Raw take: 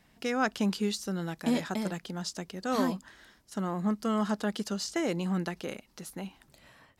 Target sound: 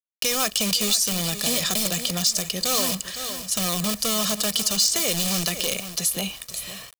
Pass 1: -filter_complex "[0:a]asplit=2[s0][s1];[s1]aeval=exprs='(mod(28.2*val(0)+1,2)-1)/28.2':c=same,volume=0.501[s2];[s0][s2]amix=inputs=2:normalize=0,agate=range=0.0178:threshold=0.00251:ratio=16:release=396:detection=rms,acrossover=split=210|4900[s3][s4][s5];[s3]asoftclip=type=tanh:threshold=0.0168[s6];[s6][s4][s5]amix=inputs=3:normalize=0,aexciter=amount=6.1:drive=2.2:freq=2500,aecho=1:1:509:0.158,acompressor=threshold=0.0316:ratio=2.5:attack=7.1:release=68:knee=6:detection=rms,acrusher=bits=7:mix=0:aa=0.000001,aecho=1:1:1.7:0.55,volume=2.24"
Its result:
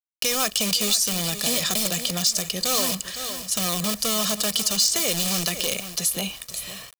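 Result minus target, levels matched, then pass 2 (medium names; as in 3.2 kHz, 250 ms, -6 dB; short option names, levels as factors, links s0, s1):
saturation: distortion +11 dB
-filter_complex "[0:a]asplit=2[s0][s1];[s1]aeval=exprs='(mod(28.2*val(0)+1,2)-1)/28.2':c=same,volume=0.501[s2];[s0][s2]amix=inputs=2:normalize=0,agate=range=0.0178:threshold=0.00251:ratio=16:release=396:detection=rms,acrossover=split=210|4900[s3][s4][s5];[s3]asoftclip=type=tanh:threshold=0.0422[s6];[s6][s4][s5]amix=inputs=3:normalize=0,aexciter=amount=6.1:drive=2.2:freq=2500,aecho=1:1:509:0.158,acompressor=threshold=0.0316:ratio=2.5:attack=7.1:release=68:knee=6:detection=rms,acrusher=bits=7:mix=0:aa=0.000001,aecho=1:1:1.7:0.55,volume=2.24"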